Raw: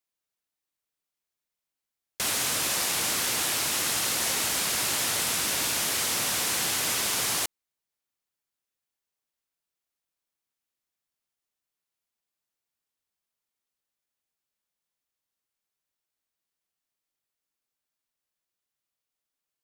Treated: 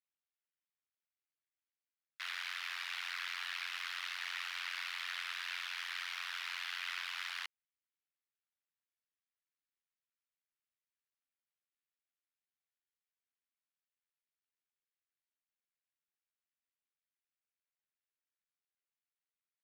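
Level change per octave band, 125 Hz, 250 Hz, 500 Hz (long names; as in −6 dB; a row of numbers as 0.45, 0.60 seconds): below −40 dB, below −40 dB, below −30 dB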